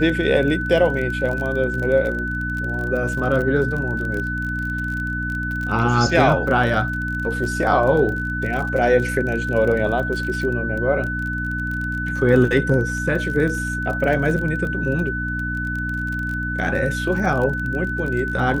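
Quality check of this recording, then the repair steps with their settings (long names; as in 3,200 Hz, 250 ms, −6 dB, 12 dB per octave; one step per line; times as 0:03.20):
surface crackle 28 per second −26 dBFS
mains hum 60 Hz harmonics 5 −27 dBFS
whistle 1,500 Hz −25 dBFS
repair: click removal
hum removal 60 Hz, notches 5
notch filter 1,500 Hz, Q 30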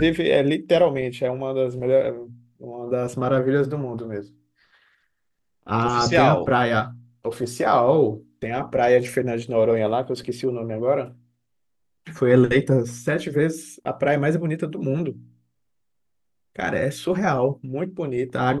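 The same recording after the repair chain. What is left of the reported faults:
none of them is left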